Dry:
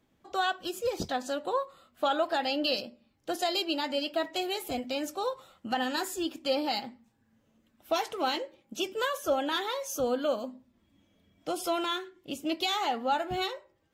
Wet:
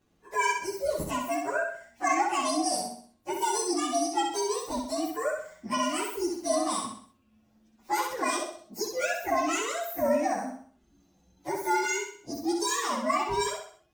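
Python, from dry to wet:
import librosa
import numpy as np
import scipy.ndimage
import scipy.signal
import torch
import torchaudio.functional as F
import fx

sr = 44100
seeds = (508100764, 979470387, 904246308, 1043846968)

y = fx.partial_stretch(x, sr, pct=125)
y = fx.echo_feedback(y, sr, ms=64, feedback_pct=42, wet_db=-4.5)
y = y * librosa.db_to_amplitude(4.0)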